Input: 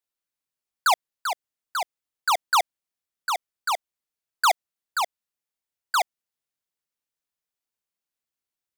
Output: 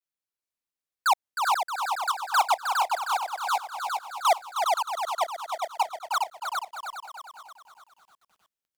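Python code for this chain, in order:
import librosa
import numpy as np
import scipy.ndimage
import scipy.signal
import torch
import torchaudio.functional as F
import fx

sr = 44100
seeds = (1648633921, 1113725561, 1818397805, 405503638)

y = fx.block_reorder(x, sr, ms=193.0, group=2)
y = fx.dynamic_eq(y, sr, hz=800.0, q=1.5, threshold_db=-36.0, ratio=4.0, max_db=6)
y = fx.wow_flutter(y, sr, seeds[0], rate_hz=2.1, depth_cents=150.0)
y = fx.echo_feedback(y, sr, ms=410, feedback_pct=34, wet_db=-3.5)
y = fx.echo_crushed(y, sr, ms=312, feedback_pct=55, bits=9, wet_db=-6.5)
y = F.gain(torch.from_numpy(y), -5.5).numpy()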